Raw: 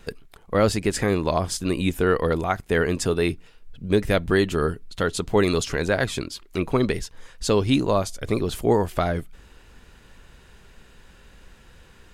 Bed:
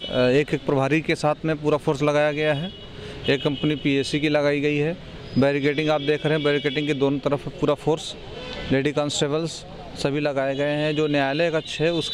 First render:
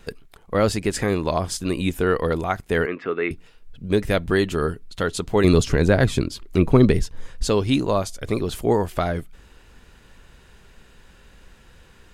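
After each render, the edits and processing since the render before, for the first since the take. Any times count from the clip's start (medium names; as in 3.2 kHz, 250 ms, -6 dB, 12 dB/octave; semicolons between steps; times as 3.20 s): 2.86–3.31 s: cabinet simulation 310–2500 Hz, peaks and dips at 610 Hz -5 dB, 870 Hz -7 dB, 1.3 kHz +6 dB, 2.1 kHz +7 dB; 5.44–7.48 s: bass shelf 400 Hz +11 dB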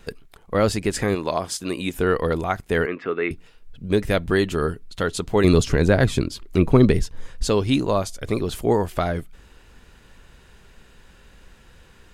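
1.15–1.94 s: high-pass 280 Hz 6 dB/octave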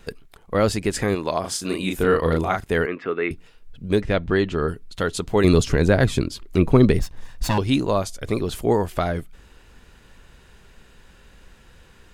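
1.40–2.73 s: doubling 37 ms -3 dB; 4.01–4.68 s: distance through air 120 m; 6.99–7.58 s: comb filter that takes the minimum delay 1.1 ms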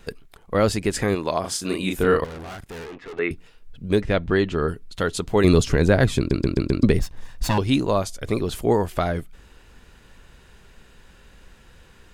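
2.24–3.19 s: valve stage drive 34 dB, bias 0.8; 6.18 s: stutter in place 0.13 s, 5 plays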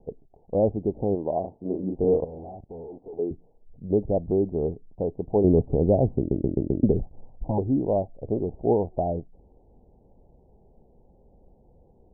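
steep low-pass 820 Hz 72 dB/octave; tilt EQ +1.5 dB/octave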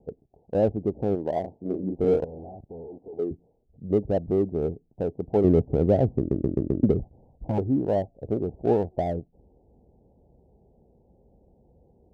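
local Wiener filter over 25 samples; high-pass 50 Hz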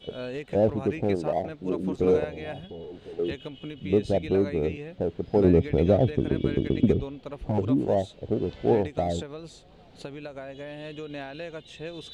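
add bed -16 dB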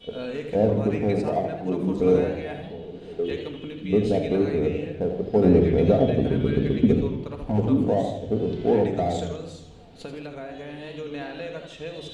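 simulated room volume 2100 m³, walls furnished, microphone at 1.7 m; modulated delay 80 ms, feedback 50%, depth 131 cents, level -8.5 dB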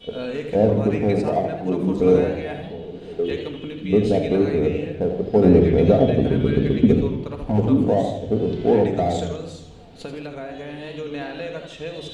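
trim +3.5 dB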